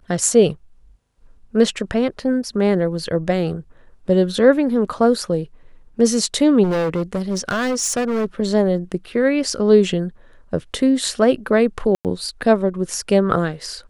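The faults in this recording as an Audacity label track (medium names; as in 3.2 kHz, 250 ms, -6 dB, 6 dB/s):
6.630000	8.250000	clipped -17 dBFS
11.950000	12.050000	dropout 98 ms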